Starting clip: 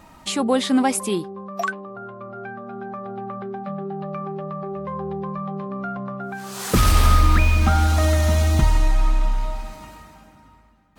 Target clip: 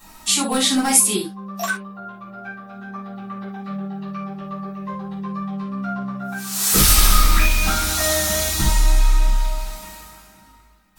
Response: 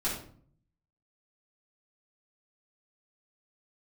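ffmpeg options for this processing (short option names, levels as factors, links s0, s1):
-filter_complex "[0:a]aeval=exprs='clip(val(0),-1,0.266)':c=same,crystalizer=i=8:c=0[s0];[1:a]atrim=start_sample=2205,atrim=end_sample=3969[s1];[s0][s1]afir=irnorm=-1:irlink=0,volume=0.316"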